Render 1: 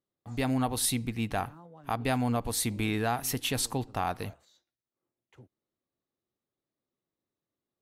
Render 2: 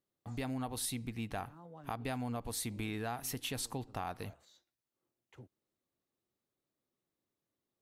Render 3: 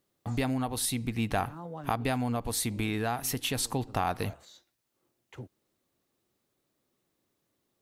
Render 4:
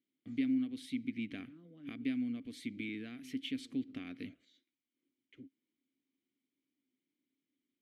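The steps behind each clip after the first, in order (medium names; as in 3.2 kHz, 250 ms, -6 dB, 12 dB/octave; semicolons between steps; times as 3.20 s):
compression 2:1, threshold -43 dBFS, peak gain reduction 10.5 dB
gain riding within 3 dB 0.5 s; trim +9 dB
vowel filter i; trim +1.5 dB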